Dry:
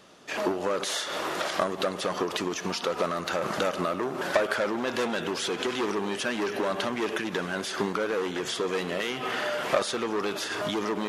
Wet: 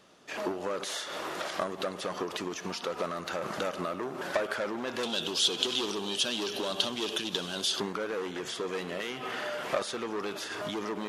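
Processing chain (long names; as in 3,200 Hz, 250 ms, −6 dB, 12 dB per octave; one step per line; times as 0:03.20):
0:05.03–0:07.80: high shelf with overshoot 2,600 Hz +8 dB, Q 3
level −5.5 dB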